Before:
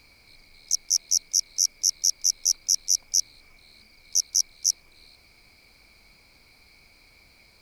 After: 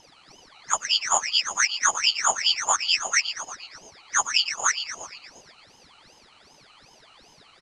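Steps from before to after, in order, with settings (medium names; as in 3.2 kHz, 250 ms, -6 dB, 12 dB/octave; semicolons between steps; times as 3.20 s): knee-point frequency compression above 1.8 kHz 1.5:1; peaking EQ 2 kHz +8 dB 2.5 oct; frequency-shifting echo 116 ms, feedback 63%, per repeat -65 Hz, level -9.5 dB; ring modulator with a swept carrier 1.9 kHz, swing 60%, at 2.6 Hz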